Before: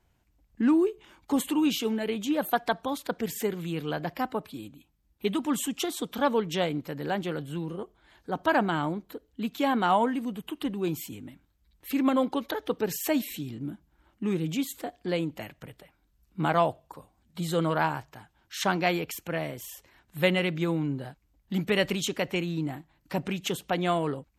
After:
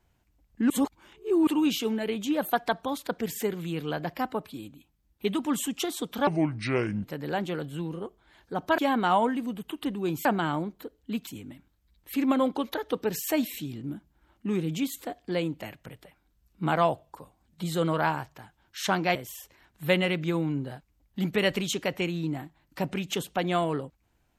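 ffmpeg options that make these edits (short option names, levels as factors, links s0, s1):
-filter_complex "[0:a]asplit=9[s0][s1][s2][s3][s4][s5][s6][s7][s8];[s0]atrim=end=0.702[s9];[s1]atrim=start=0.698:end=1.472,asetpts=PTS-STARTPTS,areverse[s10];[s2]atrim=start=1.468:end=6.274[s11];[s3]atrim=start=6.27:end=6.81,asetpts=PTS-STARTPTS,asetrate=30870,aresample=44100[s12];[s4]atrim=start=6.806:end=8.552[s13];[s5]atrim=start=9.568:end=11.042[s14];[s6]atrim=start=8.548:end=9.572[s15];[s7]atrim=start=11.038:end=18.922[s16];[s8]atrim=start=19.488[s17];[s9][s10]acrossfade=d=0.004:c1=hsin:c2=hsin[s18];[s18][s11]acrossfade=d=0.004:c1=hsin:c2=hsin[s19];[s19][s12]acrossfade=d=0.004:c1=hsin:c2=hsin[s20];[s20][s13]acrossfade=d=0.004:c1=hsin:c2=hsin[s21];[s21][s14]acrossfade=d=0.004:c1=hsin:c2=hsin[s22];[s22][s15]acrossfade=d=0.004:c1=hsin:c2=hsin[s23];[s23][s16]acrossfade=d=0.004:c1=hsin:c2=hsin[s24];[s24][s17]acrossfade=d=0.004:c1=hsin:c2=hsin"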